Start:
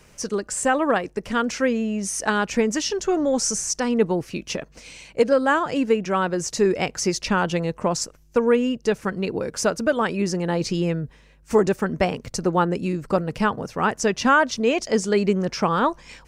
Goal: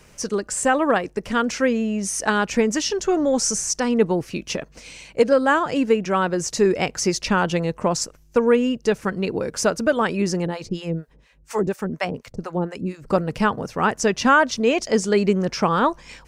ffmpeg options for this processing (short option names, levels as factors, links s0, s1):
-filter_complex "[0:a]asettb=1/sr,asplit=3[s0][s1][s2];[s0]atrim=end=10.464[s3];[s1]atrim=start=10.46:end=13.07,asetpts=PTS-STARTPTS,afade=t=in:d=0.004:c=qsin,afade=t=out:st=2.606:d=0.004:c=qsin,acrossover=split=640[s4][s5];[s4]aeval=exprs='val(0)*(1-1/2+1/2*cos(2*PI*4.2*n/s))':c=same[s6];[s5]aeval=exprs='val(0)*(1-1/2-1/2*cos(2*PI*4.2*n/s))':c=same[s7];[s6][s7]amix=inputs=2:normalize=0[s8];[s2]atrim=start=13.066[s9];[s3][s8]acrossfade=d=0.004:c1=hsin:c2=qsin[s10];[s10][s9]acrossfade=d=0.004:c1=qsin:c2=hsin,volume=1.19"